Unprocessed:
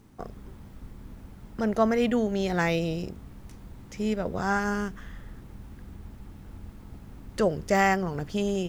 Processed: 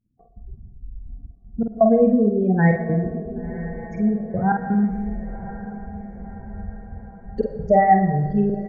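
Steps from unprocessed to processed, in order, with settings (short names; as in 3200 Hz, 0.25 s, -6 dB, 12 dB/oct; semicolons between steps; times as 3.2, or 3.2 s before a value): spectral contrast raised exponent 3.3; expander -40 dBFS; step gate "x.xxxxx." 83 bpm -24 dB; doubler 48 ms -4.5 dB; diffused feedback echo 1.046 s, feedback 52%, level -14 dB; on a send at -10 dB: reverb RT60 1.2 s, pre-delay 60 ms; on the sum: gain +8.5 dB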